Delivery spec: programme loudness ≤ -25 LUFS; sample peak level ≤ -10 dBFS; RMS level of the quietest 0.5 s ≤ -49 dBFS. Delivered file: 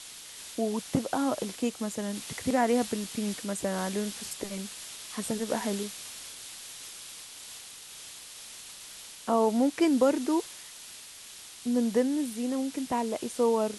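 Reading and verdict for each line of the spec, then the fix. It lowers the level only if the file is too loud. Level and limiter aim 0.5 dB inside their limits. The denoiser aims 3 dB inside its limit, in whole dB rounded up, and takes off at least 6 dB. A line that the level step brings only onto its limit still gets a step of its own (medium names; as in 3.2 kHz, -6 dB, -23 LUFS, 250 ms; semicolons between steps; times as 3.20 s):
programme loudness -30.0 LUFS: pass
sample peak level -12.5 dBFS: pass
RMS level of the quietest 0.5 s -47 dBFS: fail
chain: noise reduction 6 dB, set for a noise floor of -47 dBFS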